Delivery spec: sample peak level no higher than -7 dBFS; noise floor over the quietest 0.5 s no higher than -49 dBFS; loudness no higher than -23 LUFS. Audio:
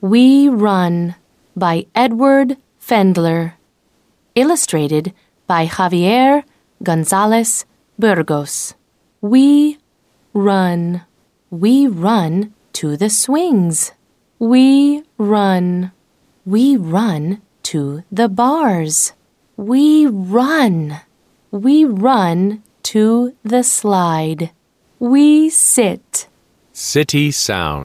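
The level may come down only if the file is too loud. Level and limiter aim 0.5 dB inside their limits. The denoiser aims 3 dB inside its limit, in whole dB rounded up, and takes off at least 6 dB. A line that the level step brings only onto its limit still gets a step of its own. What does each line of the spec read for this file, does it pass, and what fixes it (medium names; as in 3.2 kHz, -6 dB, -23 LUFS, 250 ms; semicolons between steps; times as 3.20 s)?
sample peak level -2.0 dBFS: fail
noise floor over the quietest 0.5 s -60 dBFS: pass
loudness -14.0 LUFS: fail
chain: trim -9.5 dB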